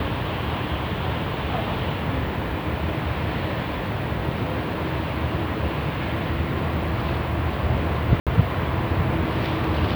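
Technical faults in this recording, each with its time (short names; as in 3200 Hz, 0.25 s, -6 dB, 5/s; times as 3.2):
8.2–8.27 gap 67 ms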